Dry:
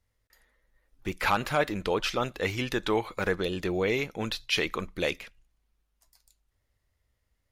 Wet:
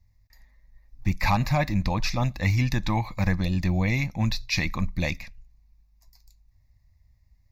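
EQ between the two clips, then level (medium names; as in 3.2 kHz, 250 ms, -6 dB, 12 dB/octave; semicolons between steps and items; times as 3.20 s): tone controls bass +13 dB, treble +3 dB; static phaser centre 2.1 kHz, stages 8; +3.0 dB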